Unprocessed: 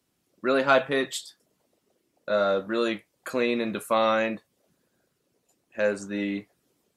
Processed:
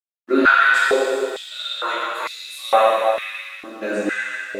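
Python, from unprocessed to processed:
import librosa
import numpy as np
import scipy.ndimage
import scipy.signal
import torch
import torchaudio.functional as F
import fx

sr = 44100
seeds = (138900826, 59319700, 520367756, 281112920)

y = fx.echo_stepped(x, sr, ms=141, hz=3800.0, octaves=0.7, feedback_pct=70, wet_db=-7.0)
y = fx.stretch_vocoder_free(y, sr, factor=0.66)
y = fx.rev_plate(y, sr, seeds[0], rt60_s=3.1, hf_ratio=0.95, predelay_ms=0, drr_db=-9.0)
y = np.sign(y) * np.maximum(np.abs(y) - 10.0 ** (-47.5 / 20.0), 0.0)
y = fx.filter_held_highpass(y, sr, hz=2.2, low_hz=300.0, high_hz=4900.0)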